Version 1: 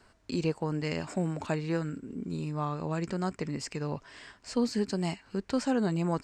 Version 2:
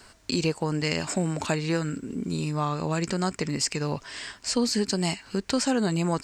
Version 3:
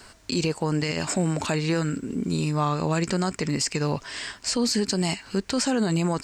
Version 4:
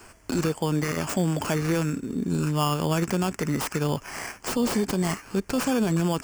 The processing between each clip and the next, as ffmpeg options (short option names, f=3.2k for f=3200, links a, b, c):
-af "highshelf=f=2.7k:g=11,acompressor=threshold=-33dB:ratio=1.5,volume=6.5dB"
-af "alimiter=limit=-18.5dB:level=0:latency=1:release=25,volume=3.5dB"
-filter_complex "[0:a]acrossover=split=430|5700[a][b][c];[b]acrusher=samples=11:mix=1:aa=0.000001[d];[c]aeval=exprs='(mod(22.4*val(0)+1,2)-1)/22.4':c=same[e];[a][d][e]amix=inputs=3:normalize=0"